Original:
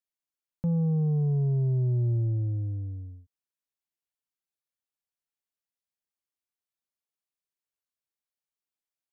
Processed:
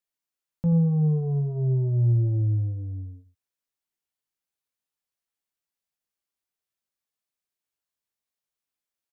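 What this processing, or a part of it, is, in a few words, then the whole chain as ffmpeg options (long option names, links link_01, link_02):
slapback doubling: -filter_complex "[0:a]asplit=3[link_01][link_02][link_03];[link_02]adelay=18,volume=-8.5dB[link_04];[link_03]adelay=84,volume=-11dB[link_05];[link_01][link_04][link_05]amix=inputs=3:normalize=0,volume=2dB"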